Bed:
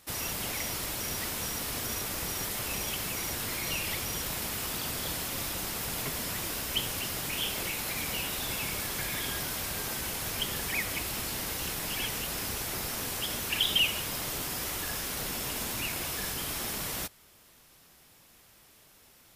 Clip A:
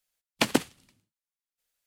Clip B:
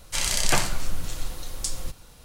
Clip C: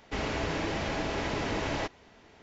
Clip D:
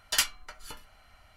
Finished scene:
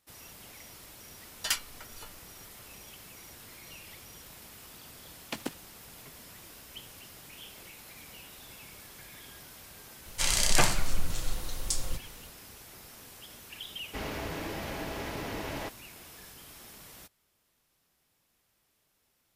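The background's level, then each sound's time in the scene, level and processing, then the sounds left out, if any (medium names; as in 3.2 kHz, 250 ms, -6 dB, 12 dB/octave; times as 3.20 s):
bed -15.5 dB
1.32 s: add D -4.5 dB
4.91 s: add A -13 dB
10.06 s: add B -1.5 dB
13.82 s: add C -5 dB + gain riding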